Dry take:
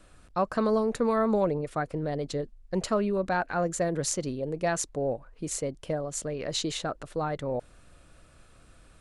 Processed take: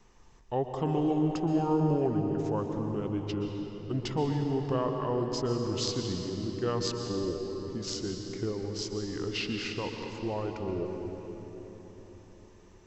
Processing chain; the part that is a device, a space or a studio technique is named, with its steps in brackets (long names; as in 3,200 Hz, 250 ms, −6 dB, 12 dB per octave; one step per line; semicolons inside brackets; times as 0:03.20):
slowed and reverbed (speed change −30%; convolution reverb RT60 4.3 s, pre-delay 115 ms, DRR 3.5 dB)
level −4 dB